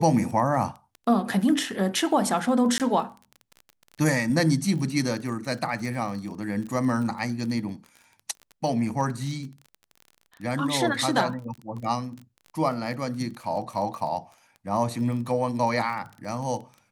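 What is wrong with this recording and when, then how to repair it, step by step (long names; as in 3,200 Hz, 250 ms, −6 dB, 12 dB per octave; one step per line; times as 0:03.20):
surface crackle 25 per second −34 dBFS
0:02.78–0:02.80: drop-out 18 ms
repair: click removal
repair the gap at 0:02.78, 18 ms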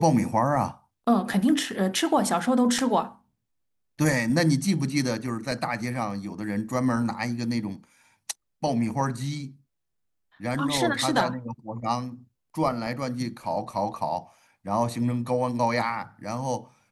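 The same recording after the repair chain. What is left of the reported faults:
none of them is left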